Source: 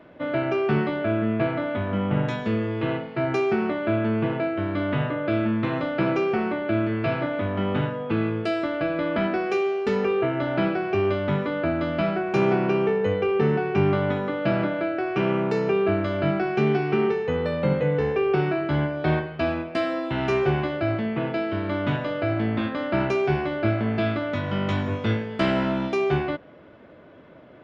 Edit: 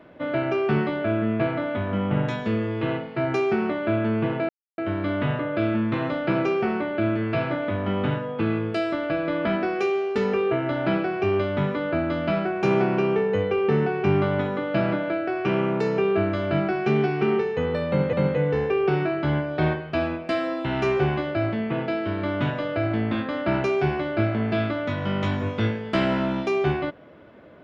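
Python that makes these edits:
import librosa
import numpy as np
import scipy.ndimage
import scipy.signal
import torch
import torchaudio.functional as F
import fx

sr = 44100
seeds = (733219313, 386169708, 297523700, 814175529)

y = fx.edit(x, sr, fx.insert_silence(at_s=4.49, length_s=0.29),
    fx.repeat(start_s=17.59, length_s=0.25, count=2), tone=tone)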